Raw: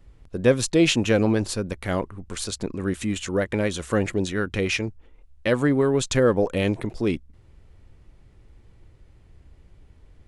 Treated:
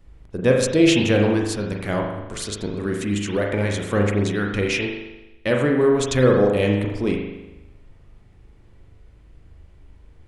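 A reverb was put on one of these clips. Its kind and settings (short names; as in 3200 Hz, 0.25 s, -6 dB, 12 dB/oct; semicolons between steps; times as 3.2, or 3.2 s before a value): spring tank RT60 1 s, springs 39 ms, chirp 80 ms, DRR 0.5 dB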